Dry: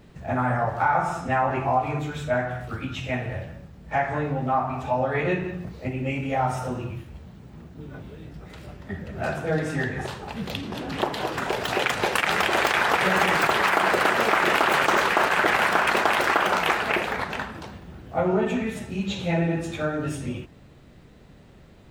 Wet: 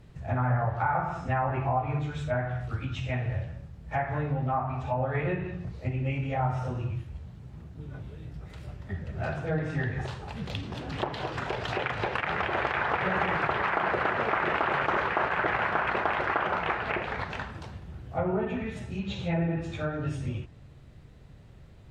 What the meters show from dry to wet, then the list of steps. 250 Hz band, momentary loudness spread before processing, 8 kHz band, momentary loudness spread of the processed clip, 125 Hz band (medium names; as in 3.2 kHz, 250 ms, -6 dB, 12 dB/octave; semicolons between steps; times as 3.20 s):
-5.5 dB, 17 LU, under -15 dB, 14 LU, +0.5 dB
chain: low-pass that closes with the level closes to 2.2 kHz, closed at -19.5 dBFS; resonant low shelf 160 Hz +6.5 dB, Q 1.5; trim -5.5 dB